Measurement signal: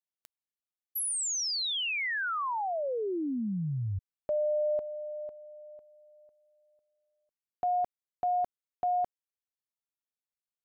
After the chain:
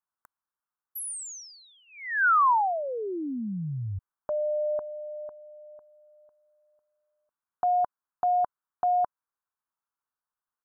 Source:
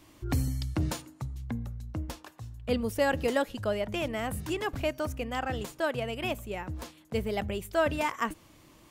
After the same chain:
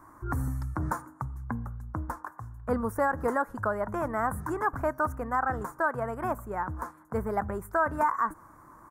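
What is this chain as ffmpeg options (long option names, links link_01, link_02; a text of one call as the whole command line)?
ffmpeg -i in.wav -af "firequalizer=gain_entry='entry(580,0);entry(1000,14);entry(1500,11);entry(2800,-30);entry(6100,-10);entry(9300,-3)':delay=0.05:min_phase=1,alimiter=limit=-17dB:level=0:latency=1:release=151" out.wav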